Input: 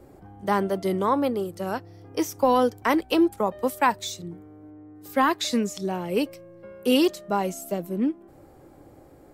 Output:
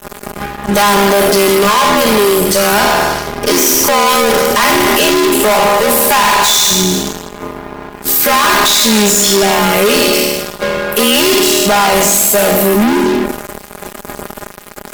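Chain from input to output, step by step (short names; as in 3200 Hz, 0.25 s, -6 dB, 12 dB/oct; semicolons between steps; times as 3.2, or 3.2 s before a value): spectral trails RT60 0.60 s; tilt +2 dB/oct; de-hum 92.89 Hz, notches 3; fuzz box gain 46 dB, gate -47 dBFS; granular stretch 1.6×, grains 26 ms; gain +5.5 dB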